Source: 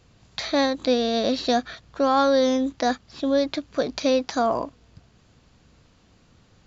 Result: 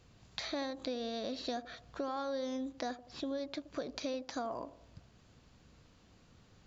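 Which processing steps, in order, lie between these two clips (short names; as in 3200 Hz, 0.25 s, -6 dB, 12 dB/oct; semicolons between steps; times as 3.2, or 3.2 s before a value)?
compressor 4:1, threshold -32 dBFS, peak gain reduction 14.5 dB; on a send: band-limited delay 82 ms, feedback 50%, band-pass 480 Hz, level -15 dB; on the sum: gain -5.5 dB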